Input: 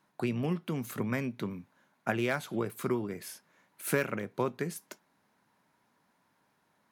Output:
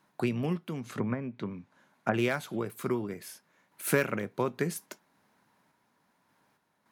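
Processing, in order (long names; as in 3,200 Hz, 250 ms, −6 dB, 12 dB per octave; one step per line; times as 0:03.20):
0:00.79–0:02.14: treble cut that deepens with the level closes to 1,300 Hz, closed at −28 dBFS
sample-and-hold tremolo
level +4 dB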